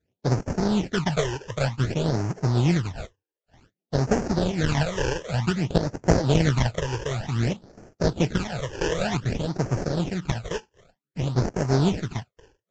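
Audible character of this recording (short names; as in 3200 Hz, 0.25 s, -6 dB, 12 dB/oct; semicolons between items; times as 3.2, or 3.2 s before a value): aliases and images of a low sample rate 1100 Hz, jitter 20%; phasing stages 12, 0.54 Hz, lowest notch 210–3600 Hz; Vorbis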